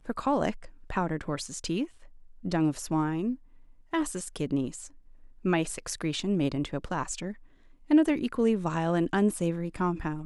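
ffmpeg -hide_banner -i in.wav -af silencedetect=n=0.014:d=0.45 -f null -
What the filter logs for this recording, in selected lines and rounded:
silence_start: 1.85
silence_end: 2.45 | silence_duration: 0.59
silence_start: 3.35
silence_end: 3.93 | silence_duration: 0.58
silence_start: 4.87
silence_end: 5.45 | silence_duration: 0.59
silence_start: 7.33
silence_end: 7.90 | silence_duration: 0.57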